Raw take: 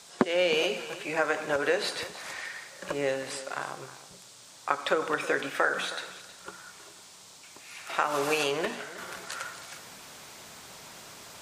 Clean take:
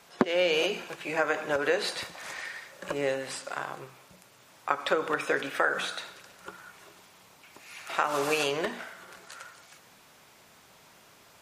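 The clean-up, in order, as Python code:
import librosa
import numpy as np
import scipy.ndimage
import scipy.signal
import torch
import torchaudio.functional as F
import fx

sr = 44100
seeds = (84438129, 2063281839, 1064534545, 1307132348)

y = fx.noise_reduce(x, sr, print_start_s=4.17, print_end_s=4.67, reduce_db=6.0)
y = fx.fix_echo_inverse(y, sr, delay_ms=316, level_db=-16.0)
y = fx.gain(y, sr, db=fx.steps((0.0, 0.0), (8.98, -8.0)))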